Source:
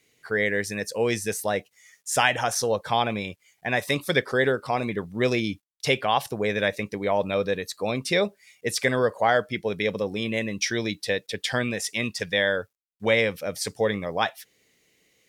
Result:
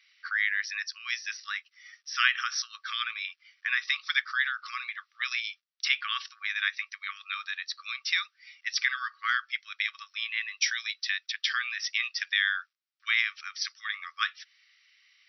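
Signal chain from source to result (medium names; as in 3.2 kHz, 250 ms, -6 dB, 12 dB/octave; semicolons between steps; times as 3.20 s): in parallel at +1 dB: compression, threshold -36 dBFS, peak gain reduction 19.5 dB; on the sum: brick-wall FIR band-pass 1.1–5.9 kHz; trim -2 dB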